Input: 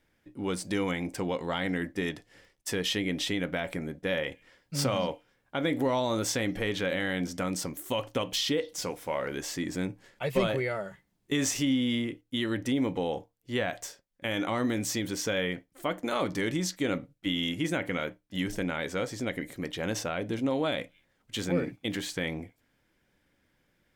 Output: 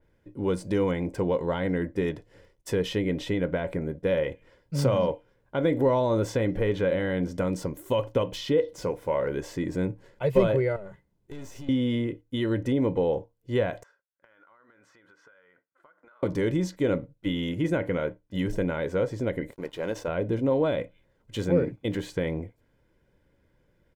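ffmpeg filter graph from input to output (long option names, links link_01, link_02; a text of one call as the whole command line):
ffmpeg -i in.wav -filter_complex "[0:a]asettb=1/sr,asplit=3[link_01][link_02][link_03];[link_01]atrim=end=10.764[link_04];[link_02]atrim=start=10.76:end=11.69,asetpts=PTS-STARTPTS,afade=type=in:duration=0.004:curve=qsin,afade=type=out:start_time=0.926:duration=0.004:curve=qsin,acompressor=threshold=-38dB:ratio=4:attack=3.2:release=140:knee=1:detection=peak,aeval=exprs='(tanh(100*val(0)+0.55)-tanh(0.55))/100':channel_layout=same[link_05];[link_03]atrim=start=11.686[link_06];[link_04][link_05]acrossfade=duration=0.004:curve1=hsin:curve2=qsin[link_07];[link_07][link_06]acrossfade=duration=0.004:curve1=qsin:curve2=hsin,asettb=1/sr,asplit=3[link_08][link_09][link_10];[link_08]atrim=end=13.834[link_11];[link_09]atrim=start=13.83:end=16.23,asetpts=PTS-STARTPTS,afade=type=in:duration=0.004:curve=qsin,afade=type=out:start_time=2.396:duration=0.004:curve=qsin,bandpass=frequency=1400:width_type=q:width=5.3,acompressor=threshold=-54dB:ratio=16:attack=3.2:release=140:knee=1:detection=peak[link_12];[link_10]atrim=start=16.226[link_13];[link_11][link_12]acrossfade=duration=0.004:curve1=hsin:curve2=qsin[link_14];[link_14][link_13]acrossfade=duration=0.004:curve1=qsin:curve2=hsin,asettb=1/sr,asplit=3[link_15][link_16][link_17];[link_15]atrim=end=19.514[link_18];[link_16]atrim=start=19.51:end=20.08,asetpts=PTS-STARTPTS,afade=type=in:duration=0.004:curve=qsin,afade=type=out:start_time=0.566:duration=0.004:curve=qsin,equalizer=frequency=76:width_type=o:width=2.5:gain=-12.5,aeval=exprs='sgn(val(0))*max(abs(val(0))-0.00398,0)':channel_layout=same[link_19];[link_17]atrim=start=20.076[link_20];[link_18][link_19]acrossfade=duration=0.004:curve1=hsin:curve2=qsin[link_21];[link_21][link_20]acrossfade=duration=0.004:curve1=qsin:curve2=hsin,tiltshelf=frequency=1100:gain=7,aecho=1:1:2:0.41,adynamicequalizer=threshold=0.00501:dfrequency=3100:dqfactor=0.7:tfrequency=3100:tqfactor=0.7:attack=5:release=100:ratio=0.375:range=3:mode=cutabove:tftype=highshelf" out.wav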